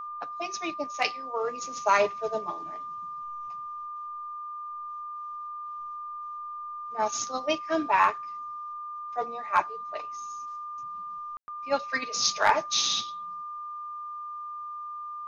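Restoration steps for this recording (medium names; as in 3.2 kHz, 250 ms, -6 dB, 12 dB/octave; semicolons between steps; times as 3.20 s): clip repair -11 dBFS; band-stop 1.2 kHz, Q 30; room tone fill 11.37–11.48 s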